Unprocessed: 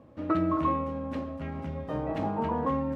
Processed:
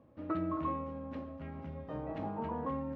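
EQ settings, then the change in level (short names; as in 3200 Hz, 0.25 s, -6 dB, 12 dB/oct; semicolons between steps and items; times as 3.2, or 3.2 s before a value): air absorption 130 m; -8.0 dB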